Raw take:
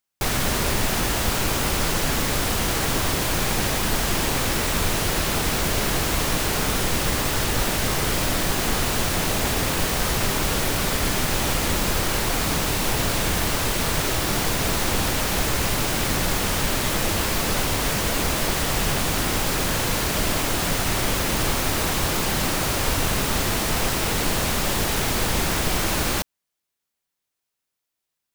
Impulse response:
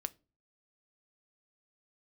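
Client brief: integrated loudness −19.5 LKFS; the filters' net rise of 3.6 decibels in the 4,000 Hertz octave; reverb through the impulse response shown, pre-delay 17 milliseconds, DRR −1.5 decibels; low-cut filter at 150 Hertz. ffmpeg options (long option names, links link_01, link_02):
-filter_complex "[0:a]highpass=150,equalizer=frequency=4000:width_type=o:gain=4.5,asplit=2[link_01][link_02];[1:a]atrim=start_sample=2205,adelay=17[link_03];[link_02][link_03]afir=irnorm=-1:irlink=0,volume=2.5dB[link_04];[link_01][link_04]amix=inputs=2:normalize=0,volume=-2dB"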